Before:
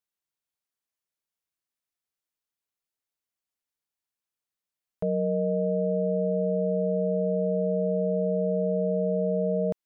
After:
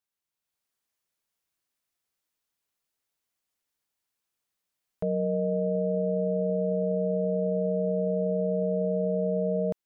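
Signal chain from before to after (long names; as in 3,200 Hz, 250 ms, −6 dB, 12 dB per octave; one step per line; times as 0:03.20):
automatic gain control gain up to 6 dB
brickwall limiter −20 dBFS, peak gain reduction 8 dB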